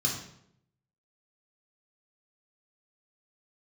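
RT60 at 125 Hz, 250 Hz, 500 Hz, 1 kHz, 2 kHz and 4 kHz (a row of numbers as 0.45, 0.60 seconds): 1.0, 0.85, 0.80, 0.65, 0.60, 0.55 seconds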